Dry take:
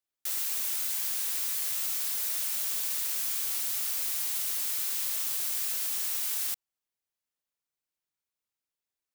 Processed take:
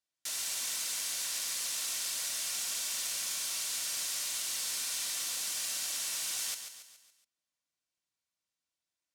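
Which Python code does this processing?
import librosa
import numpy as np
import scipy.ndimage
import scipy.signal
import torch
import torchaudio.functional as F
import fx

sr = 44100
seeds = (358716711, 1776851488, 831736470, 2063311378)

y = scipy.signal.sosfilt(scipy.signal.butter(2, 6500.0, 'lowpass', fs=sr, output='sos'), x)
y = fx.high_shelf(y, sr, hz=4700.0, db=9.5)
y = fx.notch_comb(y, sr, f0_hz=420.0)
y = fx.echo_feedback(y, sr, ms=140, feedback_pct=48, wet_db=-8.5)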